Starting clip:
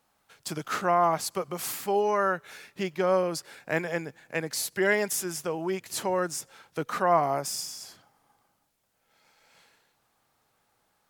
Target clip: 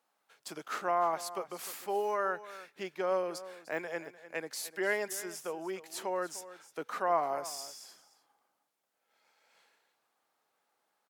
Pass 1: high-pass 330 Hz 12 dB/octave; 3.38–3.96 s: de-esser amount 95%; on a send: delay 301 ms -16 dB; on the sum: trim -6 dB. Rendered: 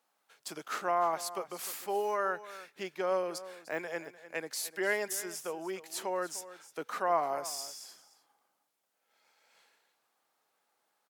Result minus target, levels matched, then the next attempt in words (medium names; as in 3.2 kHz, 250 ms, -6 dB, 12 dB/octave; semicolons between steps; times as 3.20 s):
8 kHz band +2.5 dB
high-pass 330 Hz 12 dB/octave; treble shelf 3.3 kHz -3.5 dB; 3.38–3.96 s: de-esser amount 95%; on a send: delay 301 ms -16 dB; on the sum: trim -6 dB